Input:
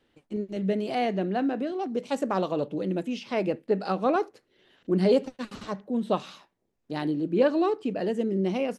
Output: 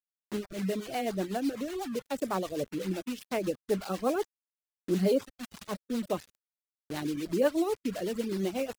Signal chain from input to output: thin delay 71 ms, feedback 69%, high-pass 5400 Hz, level -4 dB; bit-crush 6-bit; rotary speaker horn 8 Hz; reverb removal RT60 0.96 s; gain -2 dB

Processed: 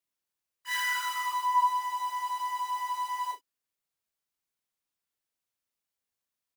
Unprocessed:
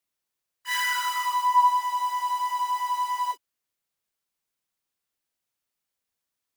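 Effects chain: doubler 37 ms -8 dB; gain -5 dB

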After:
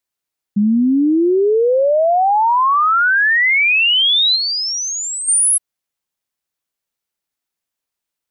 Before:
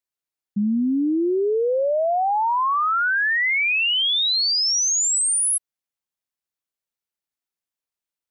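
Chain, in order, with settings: 4.35–5.27 high shelf 5000 Hz -> 3100 Hz -11.5 dB; gain +7 dB

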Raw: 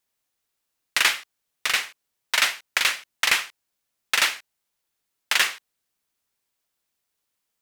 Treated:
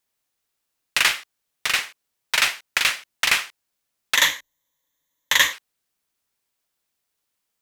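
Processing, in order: rattling part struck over -54 dBFS, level -14 dBFS; 4.15–5.53 ripple EQ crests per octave 1.1, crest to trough 13 dB; gain +1 dB

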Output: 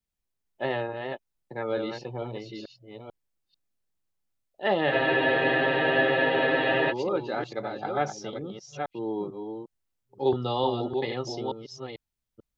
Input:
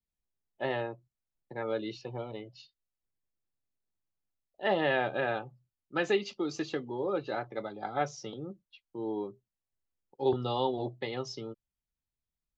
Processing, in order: reverse delay 0.443 s, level -5.5 dB; spectral freeze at 4.92, 1.99 s; gain +3.5 dB

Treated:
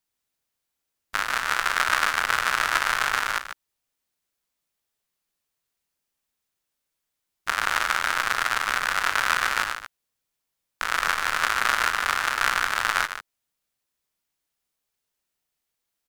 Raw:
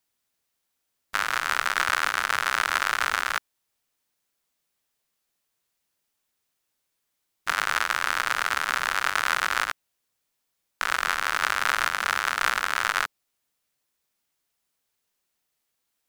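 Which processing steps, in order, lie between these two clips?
low shelf 87 Hz +5.5 dB; on a send: loudspeakers at several distances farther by 12 m -11 dB, 51 m -6 dB; on the sum: upward expander 1.5:1, over -34 dBFS; gain +2 dB

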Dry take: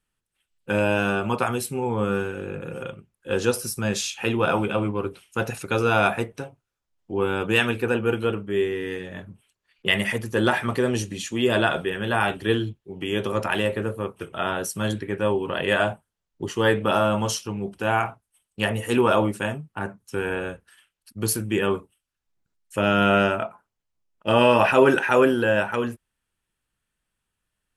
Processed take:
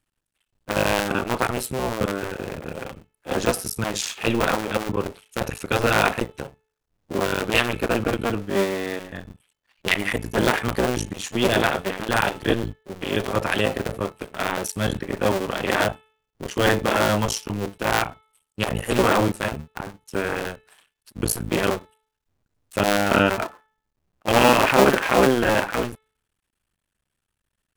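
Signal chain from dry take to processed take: cycle switcher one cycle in 2, muted; de-hum 435.4 Hz, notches 9; gain +3.5 dB

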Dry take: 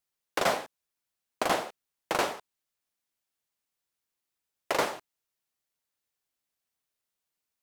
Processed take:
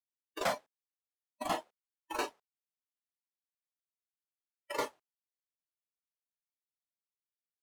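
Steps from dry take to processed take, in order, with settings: spectral noise reduction 20 dB; sample leveller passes 1; gain -8 dB

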